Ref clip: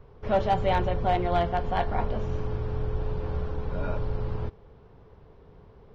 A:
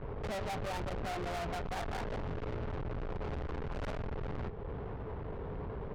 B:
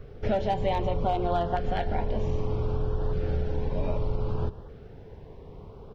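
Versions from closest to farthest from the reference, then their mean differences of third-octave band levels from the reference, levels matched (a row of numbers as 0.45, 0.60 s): B, A; 3.0, 9.0 dB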